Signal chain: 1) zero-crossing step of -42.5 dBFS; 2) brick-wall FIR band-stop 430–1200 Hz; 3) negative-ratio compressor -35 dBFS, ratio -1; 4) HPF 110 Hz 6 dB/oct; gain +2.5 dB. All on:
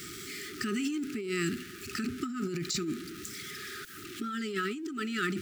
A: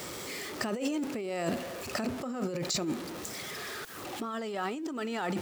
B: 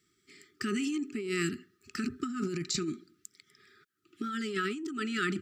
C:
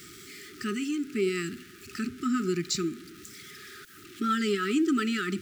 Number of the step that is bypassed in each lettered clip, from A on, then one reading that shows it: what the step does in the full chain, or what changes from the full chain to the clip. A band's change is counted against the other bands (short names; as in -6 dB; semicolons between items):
2, 500 Hz band +3.5 dB; 1, distortion -19 dB; 3, crest factor change -2.0 dB